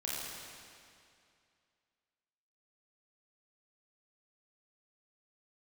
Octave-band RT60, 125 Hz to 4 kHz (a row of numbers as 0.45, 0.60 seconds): 2.4, 2.4, 2.4, 2.4, 2.3, 2.2 seconds